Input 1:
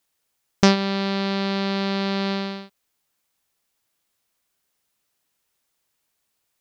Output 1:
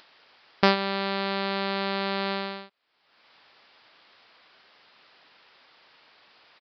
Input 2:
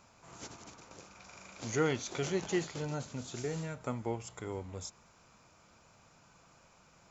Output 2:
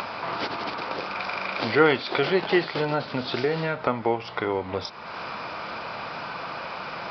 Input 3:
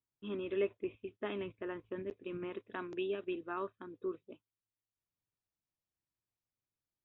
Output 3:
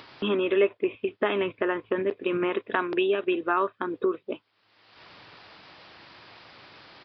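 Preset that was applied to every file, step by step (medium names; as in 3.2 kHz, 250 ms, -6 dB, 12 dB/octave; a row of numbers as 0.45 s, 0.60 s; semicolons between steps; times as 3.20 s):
high-pass 790 Hz 6 dB/octave; treble shelf 2.8 kHz -9 dB; upward compressor, threshold -37 dBFS; resampled via 11.025 kHz; normalise loudness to -27 LUFS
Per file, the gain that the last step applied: +3.0 dB, +18.0 dB, +18.0 dB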